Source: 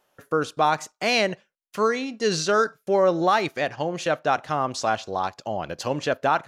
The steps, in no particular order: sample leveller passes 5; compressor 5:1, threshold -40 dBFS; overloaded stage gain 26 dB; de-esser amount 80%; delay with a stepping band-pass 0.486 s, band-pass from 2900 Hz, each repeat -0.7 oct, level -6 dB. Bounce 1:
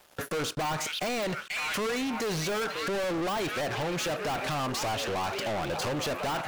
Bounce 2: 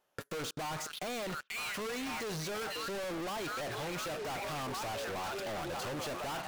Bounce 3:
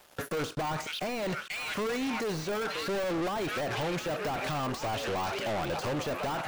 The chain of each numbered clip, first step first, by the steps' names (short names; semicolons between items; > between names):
overloaded stage > de-esser > delay with a stepping band-pass > compressor > sample leveller; delay with a stepping band-pass > de-esser > sample leveller > overloaded stage > compressor; overloaded stage > delay with a stepping band-pass > compressor > sample leveller > de-esser